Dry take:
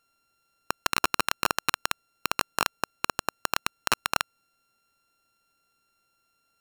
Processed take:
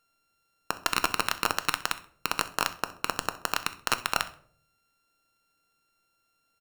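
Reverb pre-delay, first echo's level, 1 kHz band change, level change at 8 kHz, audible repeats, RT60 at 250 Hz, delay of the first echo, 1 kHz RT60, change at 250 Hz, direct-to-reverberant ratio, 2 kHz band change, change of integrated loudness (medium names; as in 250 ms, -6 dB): 4 ms, -19.5 dB, -1.0 dB, -1.5 dB, 1, 0.70 s, 65 ms, 0.45 s, -1.0 dB, 10.0 dB, -1.0 dB, -1.0 dB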